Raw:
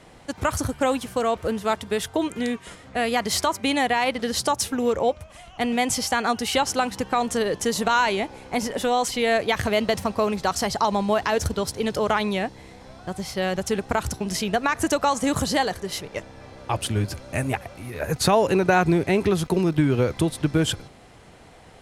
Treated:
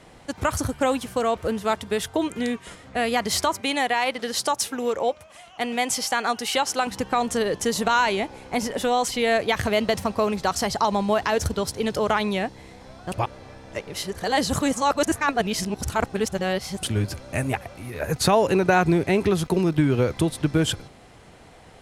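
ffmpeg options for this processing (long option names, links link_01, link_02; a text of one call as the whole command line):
ffmpeg -i in.wav -filter_complex "[0:a]asettb=1/sr,asplit=3[link_01][link_02][link_03];[link_01]atrim=end=3.614[link_04];[link_02]atrim=start=3.61:end=6.87,asetpts=PTS-STARTPTS,afade=type=in:duration=0.004:curve=qsin,afade=type=out:start_time=3.256:duration=0.004:curve=qsin,highpass=frequency=390:poles=1[link_05];[link_03]atrim=start=6.866[link_06];[link_04][link_05]acrossfade=duration=0.004:curve1=hsin:curve2=qsin[link_07];[link_07][link_06]acrossfade=duration=0.004:curve1=qsin:curve2=hsin,asplit=3[link_08][link_09][link_10];[link_08]atrim=end=13.122[link_11];[link_09]atrim=start=13.118:end=16.832,asetpts=PTS-STARTPTS,areverse[link_12];[link_10]atrim=start=16.828[link_13];[link_11][link_12]acrossfade=duration=0.004:curve1=hsin:curve2=hsin[link_14];[link_14][link_13]acrossfade=duration=0.004:curve1=hsin:curve2=hsin" out.wav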